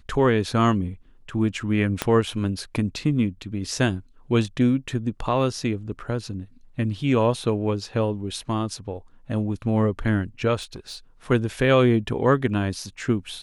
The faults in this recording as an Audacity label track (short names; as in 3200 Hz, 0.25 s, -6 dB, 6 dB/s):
2.020000	2.020000	pop -7 dBFS
10.610000	10.970000	clipped -31 dBFS